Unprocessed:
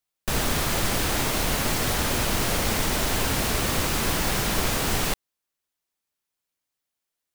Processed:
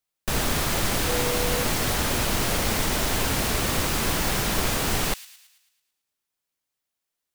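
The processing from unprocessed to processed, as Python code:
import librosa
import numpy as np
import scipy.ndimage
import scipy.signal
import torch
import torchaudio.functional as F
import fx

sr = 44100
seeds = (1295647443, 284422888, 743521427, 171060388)

y = fx.dmg_tone(x, sr, hz=490.0, level_db=-28.0, at=(1.06, 1.63), fade=0.02)
y = fx.echo_wet_highpass(y, sr, ms=110, feedback_pct=51, hz=2700.0, wet_db=-14)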